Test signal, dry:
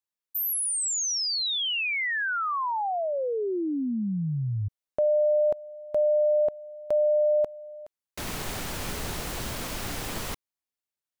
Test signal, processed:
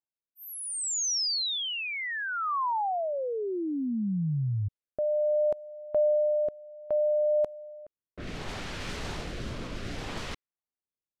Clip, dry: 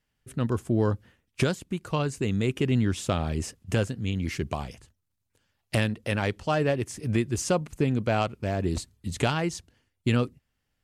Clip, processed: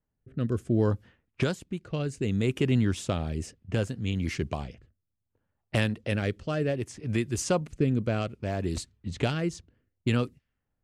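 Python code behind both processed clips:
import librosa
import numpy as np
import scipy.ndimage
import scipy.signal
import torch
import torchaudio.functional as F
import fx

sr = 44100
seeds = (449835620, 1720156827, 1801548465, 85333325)

y = fx.env_lowpass(x, sr, base_hz=1000.0, full_db=-24.0)
y = fx.rotary(y, sr, hz=0.65)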